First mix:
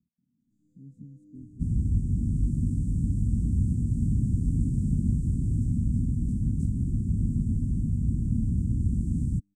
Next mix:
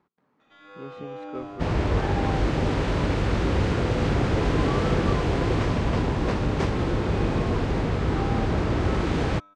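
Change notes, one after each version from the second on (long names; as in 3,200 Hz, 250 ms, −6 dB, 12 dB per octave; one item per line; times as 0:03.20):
master: remove Chebyshev band-stop filter 240–7,900 Hz, order 4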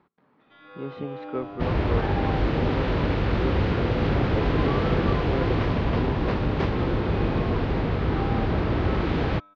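speech +6.0 dB
master: add low-pass filter 4,400 Hz 24 dB per octave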